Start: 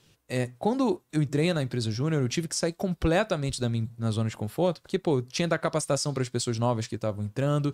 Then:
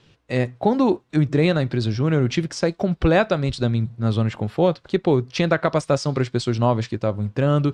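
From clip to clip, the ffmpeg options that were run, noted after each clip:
-af "lowpass=3.8k,volume=7dB"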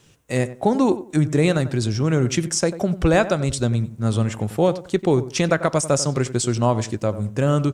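-filter_complex "[0:a]aexciter=amount=7.9:drive=4:freq=6.2k,asplit=2[a][b];[b]adelay=93,lowpass=f=1.6k:p=1,volume=-13.5dB,asplit=2[c][d];[d]adelay=93,lowpass=f=1.6k:p=1,volume=0.24,asplit=2[e][f];[f]adelay=93,lowpass=f=1.6k:p=1,volume=0.24[g];[a][c][e][g]amix=inputs=4:normalize=0"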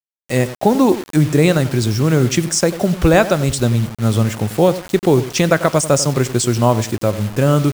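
-af "acrusher=bits=5:mix=0:aa=0.000001,volume=5dB"

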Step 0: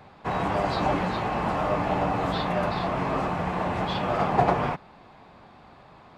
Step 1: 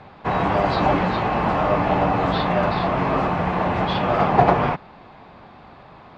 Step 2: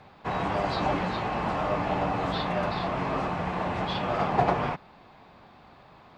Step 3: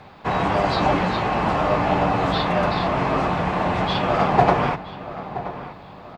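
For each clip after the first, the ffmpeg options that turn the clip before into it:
-af "lowpass=4.5k,volume=6dB"
-af "aemphasis=mode=production:type=50fm,volume=-8dB"
-filter_complex "[0:a]asplit=2[a][b];[b]adelay=974,lowpass=f=2.2k:p=1,volume=-13dB,asplit=2[c][d];[d]adelay=974,lowpass=f=2.2k:p=1,volume=0.41,asplit=2[e][f];[f]adelay=974,lowpass=f=2.2k:p=1,volume=0.41,asplit=2[g][h];[h]adelay=974,lowpass=f=2.2k:p=1,volume=0.41[i];[a][c][e][g][i]amix=inputs=5:normalize=0,volume=7.5dB"

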